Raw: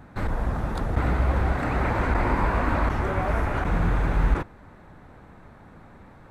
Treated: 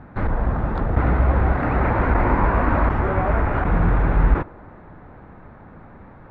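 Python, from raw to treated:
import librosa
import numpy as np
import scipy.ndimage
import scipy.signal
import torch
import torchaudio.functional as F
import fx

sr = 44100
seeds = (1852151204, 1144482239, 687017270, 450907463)

p1 = scipy.signal.sosfilt(scipy.signal.butter(2, 2000.0, 'lowpass', fs=sr, output='sos'), x)
p2 = p1 + fx.echo_wet_bandpass(p1, sr, ms=101, feedback_pct=81, hz=590.0, wet_db=-23.5, dry=0)
y = p2 * librosa.db_to_amplitude(5.0)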